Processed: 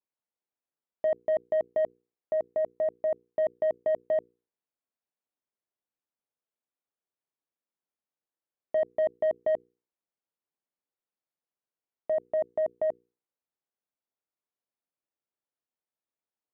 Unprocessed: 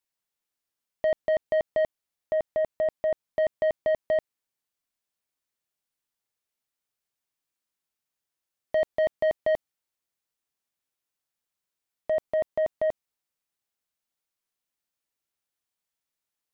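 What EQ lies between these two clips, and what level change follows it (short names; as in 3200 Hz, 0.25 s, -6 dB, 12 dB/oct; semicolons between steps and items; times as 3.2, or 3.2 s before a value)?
band-pass 420 Hz, Q 0.61; notches 60/120/180/240/300/360/420/480 Hz; -1.0 dB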